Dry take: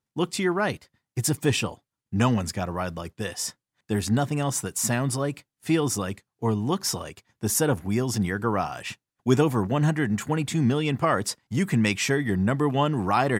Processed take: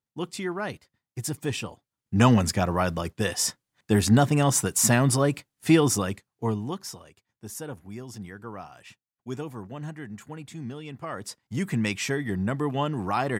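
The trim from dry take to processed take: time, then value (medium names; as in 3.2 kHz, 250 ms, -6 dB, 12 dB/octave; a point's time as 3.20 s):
1.67 s -6.5 dB
2.31 s +4.5 dB
5.71 s +4.5 dB
6.52 s -2.5 dB
7.01 s -14 dB
11.00 s -14 dB
11.55 s -4 dB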